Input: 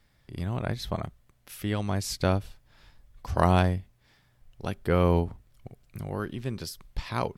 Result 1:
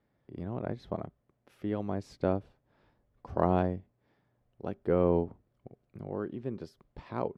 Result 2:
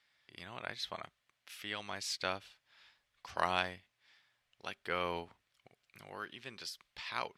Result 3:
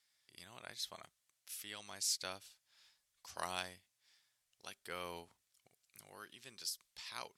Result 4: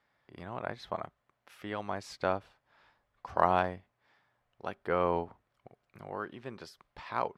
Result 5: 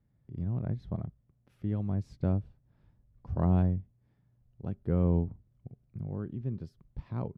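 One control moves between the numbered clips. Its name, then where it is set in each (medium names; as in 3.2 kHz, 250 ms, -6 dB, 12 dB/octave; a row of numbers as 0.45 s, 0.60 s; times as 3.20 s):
band-pass filter, frequency: 380 Hz, 2.8 kHz, 7.5 kHz, 1 kHz, 140 Hz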